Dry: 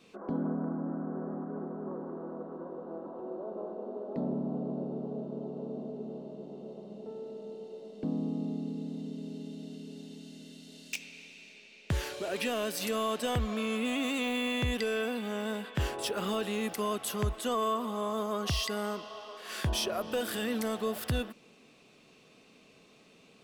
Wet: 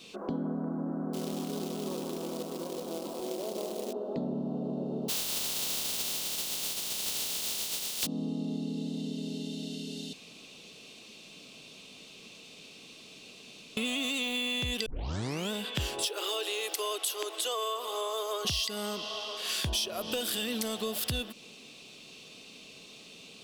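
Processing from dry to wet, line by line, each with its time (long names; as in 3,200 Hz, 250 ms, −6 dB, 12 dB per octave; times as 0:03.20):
0:01.13–0:03.93: floating-point word with a short mantissa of 2 bits
0:05.08–0:08.05: compressing power law on the bin magnitudes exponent 0.15
0:10.13–0:13.77: fill with room tone
0:14.86: tape start 0.66 s
0:16.05–0:18.45: Chebyshev high-pass filter 310 Hz, order 6
whole clip: high shelf with overshoot 2,400 Hz +8.5 dB, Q 1.5; downward compressor 4 to 1, threshold −35 dBFS; level +4.5 dB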